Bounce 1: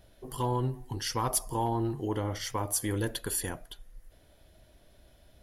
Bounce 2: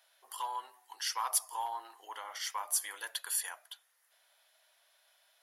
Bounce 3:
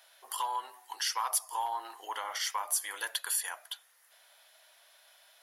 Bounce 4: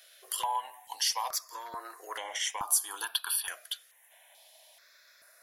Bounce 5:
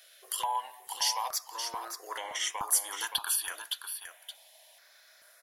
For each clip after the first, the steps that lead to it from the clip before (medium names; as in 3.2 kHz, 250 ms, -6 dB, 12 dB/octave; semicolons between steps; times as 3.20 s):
high-pass 870 Hz 24 dB/octave; trim -1 dB
compression 2:1, threshold -41 dBFS, peak gain reduction 9 dB; trim +8 dB
stepped phaser 2.3 Hz 240–4600 Hz; trim +5 dB
delay 572 ms -8 dB